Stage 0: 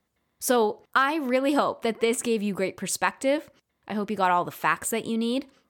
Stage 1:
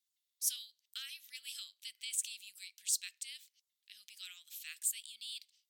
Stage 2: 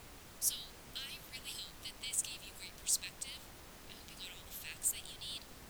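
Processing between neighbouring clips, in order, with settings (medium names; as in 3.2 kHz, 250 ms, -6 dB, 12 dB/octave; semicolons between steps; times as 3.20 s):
inverse Chebyshev high-pass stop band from 1 kHz, stop band 60 dB; trim -3.5 dB
added noise pink -54 dBFS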